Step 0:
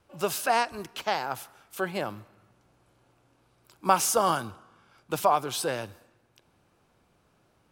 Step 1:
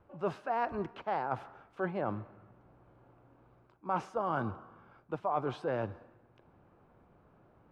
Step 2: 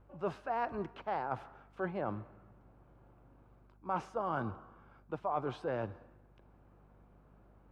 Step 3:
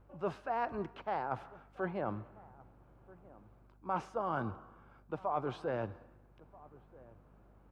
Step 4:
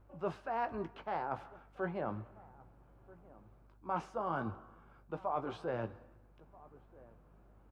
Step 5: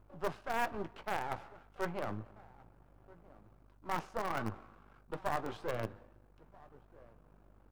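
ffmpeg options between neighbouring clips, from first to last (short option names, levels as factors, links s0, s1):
-af "lowpass=1300,areverse,acompressor=threshold=0.02:ratio=6,areverse,volume=1.58"
-af "aeval=exprs='val(0)+0.001*(sin(2*PI*50*n/s)+sin(2*PI*2*50*n/s)/2+sin(2*PI*3*50*n/s)/3+sin(2*PI*4*50*n/s)/4+sin(2*PI*5*50*n/s)/5)':c=same,volume=0.75"
-filter_complex "[0:a]asplit=2[s0][s1];[s1]adelay=1283,volume=0.0891,highshelf=f=4000:g=-28.9[s2];[s0][s2]amix=inputs=2:normalize=0"
-filter_complex "[0:a]flanger=delay=2.8:depth=3.1:regen=-79:speed=1.3:shape=triangular,asplit=2[s0][s1];[s1]adelay=18,volume=0.266[s2];[s0][s2]amix=inputs=2:normalize=0,volume=1.41"
-filter_complex "[0:a]aeval=exprs='if(lt(val(0),0),0.251*val(0),val(0))':c=same,asplit=2[s0][s1];[s1]acrusher=bits=4:mix=0:aa=0.000001,volume=0.251[s2];[s0][s2]amix=inputs=2:normalize=0,volume=1.41"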